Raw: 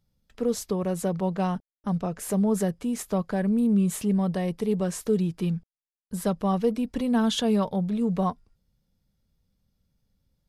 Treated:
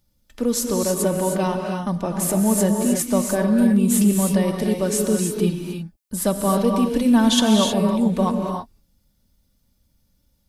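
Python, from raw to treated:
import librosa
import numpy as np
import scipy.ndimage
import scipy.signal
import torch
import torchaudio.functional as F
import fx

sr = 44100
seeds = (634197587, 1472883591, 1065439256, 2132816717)

y = fx.high_shelf(x, sr, hz=5800.0, db=9.0)
y = y + 0.43 * np.pad(y, (int(3.4 * sr / 1000.0), 0))[:len(y)]
y = fx.rev_gated(y, sr, seeds[0], gate_ms=340, shape='rising', drr_db=2.0)
y = F.gain(torch.from_numpy(y), 4.5).numpy()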